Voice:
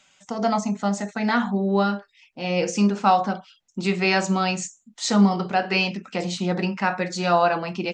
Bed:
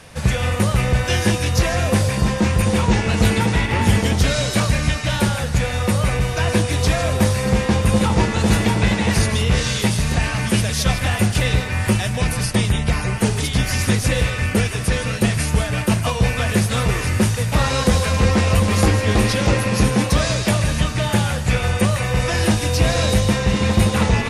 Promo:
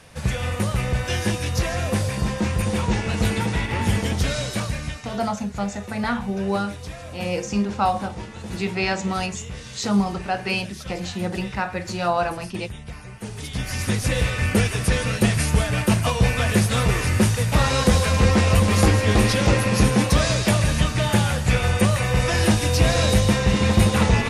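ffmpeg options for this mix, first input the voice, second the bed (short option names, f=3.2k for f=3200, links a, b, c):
-filter_complex "[0:a]adelay=4750,volume=-3dB[a];[1:a]volume=11dB,afade=t=out:st=4.32:d=0.9:silence=0.251189,afade=t=in:st=13.2:d=1.31:silence=0.149624[b];[a][b]amix=inputs=2:normalize=0"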